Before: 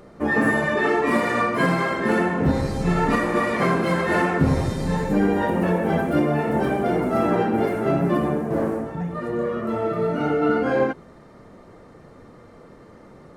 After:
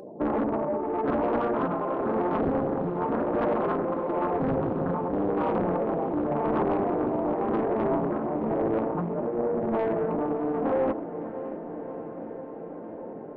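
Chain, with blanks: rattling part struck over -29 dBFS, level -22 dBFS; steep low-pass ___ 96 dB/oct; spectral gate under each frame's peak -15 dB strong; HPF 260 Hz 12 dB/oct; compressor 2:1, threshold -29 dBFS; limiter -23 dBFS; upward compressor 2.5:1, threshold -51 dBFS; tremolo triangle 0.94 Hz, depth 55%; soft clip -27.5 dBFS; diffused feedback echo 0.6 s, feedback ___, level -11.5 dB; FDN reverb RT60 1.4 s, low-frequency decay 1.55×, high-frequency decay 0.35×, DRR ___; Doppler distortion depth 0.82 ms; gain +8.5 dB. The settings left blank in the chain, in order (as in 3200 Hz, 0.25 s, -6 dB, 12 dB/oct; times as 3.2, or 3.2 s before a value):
1100 Hz, 77%, 15.5 dB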